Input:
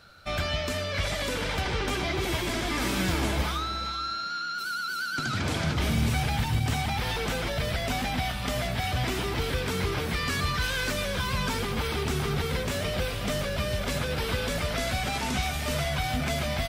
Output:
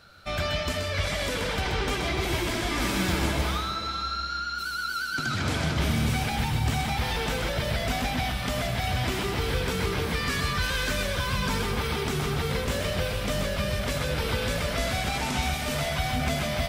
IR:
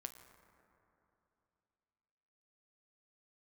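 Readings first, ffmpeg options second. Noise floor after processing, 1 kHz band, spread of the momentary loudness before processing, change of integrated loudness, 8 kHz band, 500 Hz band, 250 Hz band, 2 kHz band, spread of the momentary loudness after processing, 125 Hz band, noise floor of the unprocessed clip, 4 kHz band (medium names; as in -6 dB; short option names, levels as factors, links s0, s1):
-32 dBFS, +1.0 dB, 3 LU, +1.0 dB, +1.0 dB, +1.0 dB, +1.0 dB, +1.0 dB, 3 LU, +1.0 dB, -33 dBFS, +1.0 dB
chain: -filter_complex "[0:a]asplit=2[s0][s1];[1:a]atrim=start_sample=2205,adelay=128[s2];[s1][s2]afir=irnorm=-1:irlink=0,volume=0.891[s3];[s0][s3]amix=inputs=2:normalize=0"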